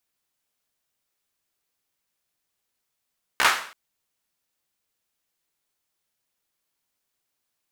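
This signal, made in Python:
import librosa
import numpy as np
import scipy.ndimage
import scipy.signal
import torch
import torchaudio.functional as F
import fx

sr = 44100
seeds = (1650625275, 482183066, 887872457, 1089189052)

y = fx.drum_clap(sr, seeds[0], length_s=0.33, bursts=4, spacing_ms=15, hz=1400.0, decay_s=0.49)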